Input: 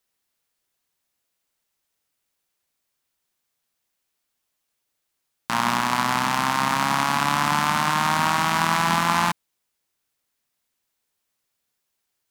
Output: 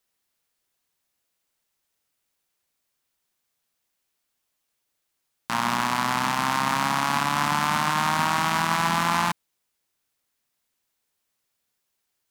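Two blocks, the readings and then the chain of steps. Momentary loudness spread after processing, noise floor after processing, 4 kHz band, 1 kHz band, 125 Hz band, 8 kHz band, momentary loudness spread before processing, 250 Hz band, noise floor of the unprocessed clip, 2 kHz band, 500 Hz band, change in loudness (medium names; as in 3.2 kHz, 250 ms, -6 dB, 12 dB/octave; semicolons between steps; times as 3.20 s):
4 LU, -78 dBFS, -2.0 dB, -2.0 dB, -2.0 dB, -2.0 dB, 4 LU, -2.0 dB, -78 dBFS, -2.0 dB, -2.0 dB, -2.0 dB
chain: peak limiter -8.5 dBFS, peak gain reduction 4.5 dB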